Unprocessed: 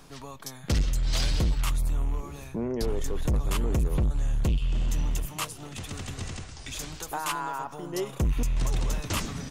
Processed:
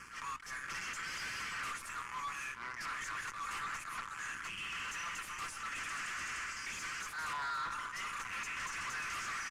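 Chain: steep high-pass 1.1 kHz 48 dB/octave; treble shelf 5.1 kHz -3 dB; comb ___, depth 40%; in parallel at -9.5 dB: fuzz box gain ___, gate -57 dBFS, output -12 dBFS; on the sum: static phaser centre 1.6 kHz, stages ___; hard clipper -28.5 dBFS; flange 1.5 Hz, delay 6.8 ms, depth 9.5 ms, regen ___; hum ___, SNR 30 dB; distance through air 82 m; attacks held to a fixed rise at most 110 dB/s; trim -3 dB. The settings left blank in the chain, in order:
5.9 ms, 51 dB, 4, +86%, 60 Hz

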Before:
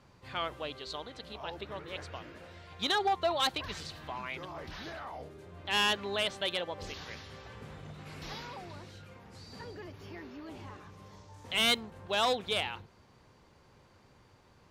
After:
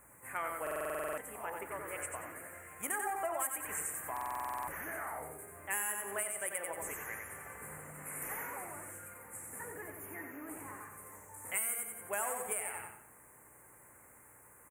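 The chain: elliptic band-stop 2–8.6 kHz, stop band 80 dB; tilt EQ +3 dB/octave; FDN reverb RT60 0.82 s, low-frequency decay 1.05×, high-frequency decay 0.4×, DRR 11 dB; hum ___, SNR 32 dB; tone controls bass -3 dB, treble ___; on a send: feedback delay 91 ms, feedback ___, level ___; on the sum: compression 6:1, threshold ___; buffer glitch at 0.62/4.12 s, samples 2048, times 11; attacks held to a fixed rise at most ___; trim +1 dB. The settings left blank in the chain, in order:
60 Hz, +14 dB, 32%, -5 dB, -34 dBFS, 330 dB/s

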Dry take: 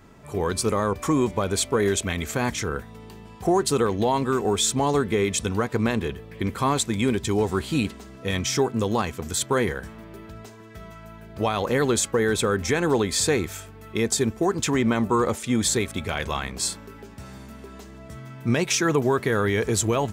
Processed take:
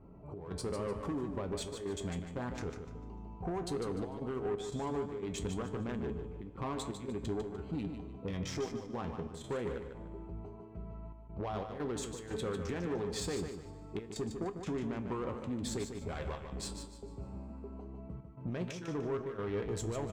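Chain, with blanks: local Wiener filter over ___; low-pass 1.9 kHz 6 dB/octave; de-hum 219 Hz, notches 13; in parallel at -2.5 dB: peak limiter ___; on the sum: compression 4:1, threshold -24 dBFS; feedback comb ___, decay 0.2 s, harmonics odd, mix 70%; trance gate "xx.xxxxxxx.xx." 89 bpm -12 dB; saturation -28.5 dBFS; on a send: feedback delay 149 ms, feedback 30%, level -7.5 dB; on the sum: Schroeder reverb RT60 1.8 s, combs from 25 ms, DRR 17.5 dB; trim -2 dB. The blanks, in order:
25 samples, -21.5 dBFS, 59 Hz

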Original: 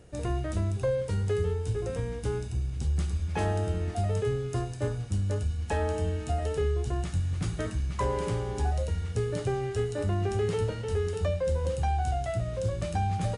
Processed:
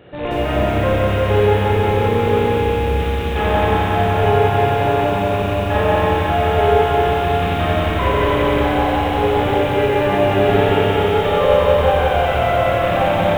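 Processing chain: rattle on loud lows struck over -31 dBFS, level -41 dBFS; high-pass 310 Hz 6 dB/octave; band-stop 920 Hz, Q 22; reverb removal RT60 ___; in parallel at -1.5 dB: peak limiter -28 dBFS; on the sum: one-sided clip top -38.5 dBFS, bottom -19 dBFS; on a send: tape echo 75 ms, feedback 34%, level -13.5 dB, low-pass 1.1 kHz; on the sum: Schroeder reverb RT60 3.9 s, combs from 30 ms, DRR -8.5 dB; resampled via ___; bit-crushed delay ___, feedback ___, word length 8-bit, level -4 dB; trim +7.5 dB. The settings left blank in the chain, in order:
1.2 s, 8 kHz, 180 ms, 55%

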